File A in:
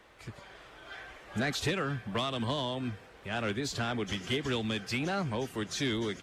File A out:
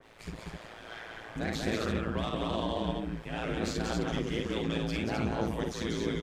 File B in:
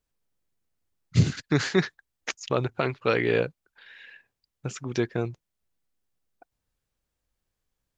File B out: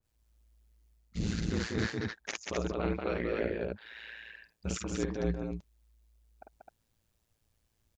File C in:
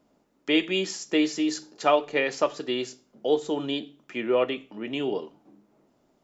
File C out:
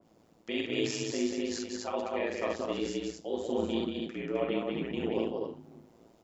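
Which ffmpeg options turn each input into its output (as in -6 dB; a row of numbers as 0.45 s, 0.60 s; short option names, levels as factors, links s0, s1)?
-filter_complex "[0:a]asplit=2[s0][s1];[s1]alimiter=limit=0.15:level=0:latency=1:release=358,volume=0.75[s2];[s0][s2]amix=inputs=2:normalize=0,equalizer=f=1400:t=o:w=1.1:g=-3.5,areverse,acompressor=threshold=0.0398:ratio=10,areverse,aecho=1:1:49.56|186.6|259.5:0.708|0.708|0.708,aeval=exprs='val(0)*sin(2*PI*56*n/s)':c=same,adynamicequalizer=threshold=0.00316:dfrequency=2200:dqfactor=0.7:tfrequency=2200:tqfactor=0.7:attack=5:release=100:ratio=0.375:range=3.5:mode=cutabove:tftype=highshelf"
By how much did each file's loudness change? 0.0 LU, -8.0 LU, -6.5 LU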